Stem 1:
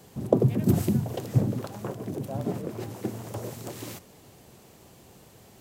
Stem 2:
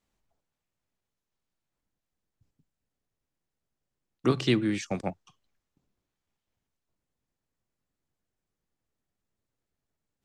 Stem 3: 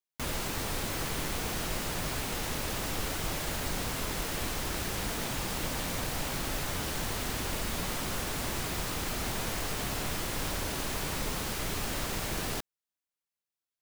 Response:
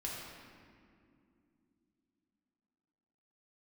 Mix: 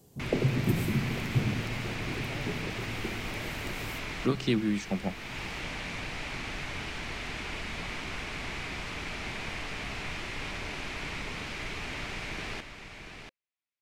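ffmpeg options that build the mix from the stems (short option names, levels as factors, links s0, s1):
-filter_complex "[0:a]equalizer=f=1600:t=o:w=2.5:g=-11.5,volume=0.422,asplit=2[s0][s1];[s1]volume=0.596[s2];[1:a]equalizer=f=200:t=o:w=0.27:g=9,volume=0.631,asplit=2[s3][s4];[2:a]lowpass=5000,equalizer=f=2300:t=o:w=0.69:g=10,bandreject=f=530:w=12,volume=0.562,asplit=2[s5][s6];[s6]volume=0.398[s7];[s4]apad=whole_len=609435[s8];[s5][s8]sidechaincompress=threshold=0.0141:ratio=8:attack=27:release=410[s9];[3:a]atrim=start_sample=2205[s10];[s2][s10]afir=irnorm=-1:irlink=0[s11];[s7]aecho=0:1:687:1[s12];[s0][s3][s9][s11][s12]amix=inputs=5:normalize=0"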